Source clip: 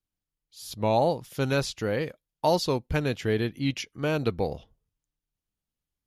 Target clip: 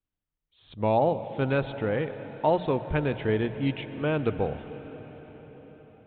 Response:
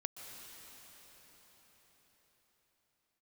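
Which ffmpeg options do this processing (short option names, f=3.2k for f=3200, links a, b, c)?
-filter_complex "[0:a]bandreject=f=60:t=h:w=6,bandreject=f=120:t=h:w=6,bandreject=f=180:t=h:w=6,asplit=2[a][b];[1:a]atrim=start_sample=2205,lowpass=2.8k[c];[b][c]afir=irnorm=-1:irlink=0,volume=-2dB[d];[a][d]amix=inputs=2:normalize=0,aresample=8000,aresample=44100,volume=-3.5dB"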